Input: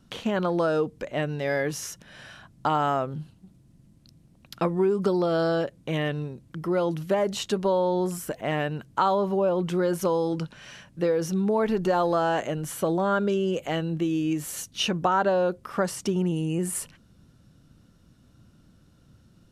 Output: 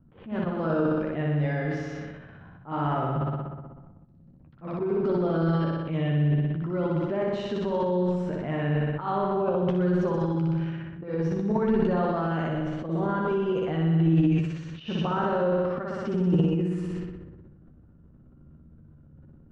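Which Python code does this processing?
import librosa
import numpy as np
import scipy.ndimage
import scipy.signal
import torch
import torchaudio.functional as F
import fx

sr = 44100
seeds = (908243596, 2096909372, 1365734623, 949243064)

p1 = fx.peak_eq(x, sr, hz=610.0, db=-7.5, octaves=2.3)
p2 = p1 + fx.room_flutter(p1, sr, wall_m=10.5, rt60_s=1.4, dry=0)
p3 = fx.auto_swell(p2, sr, attack_ms=105.0)
p4 = fx.env_lowpass(p3, sr, base_hz=1100.0, full_db=-24.5)
p5 = fx.transient(p4, sr, attack_db=-3, sustain_db=11)
p6 = fx.spacing_loss(p5, sr, db_at_10k=43)
p7 = fx.doubler(p6, sr, ms=13.0, db=-7.0)
y = F.gain(torch.from_numpy(p7), 1.5).numpy()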